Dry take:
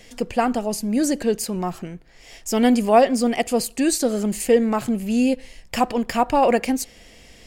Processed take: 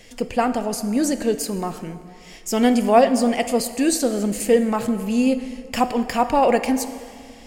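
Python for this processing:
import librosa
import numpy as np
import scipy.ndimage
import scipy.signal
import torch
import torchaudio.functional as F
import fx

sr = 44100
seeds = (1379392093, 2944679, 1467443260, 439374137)

y = fx.rev_plate(x, sr, seeds[0], rt60_s=2.2, hf_ratio=0.6, predelay_ms=0, drr_db=10.0)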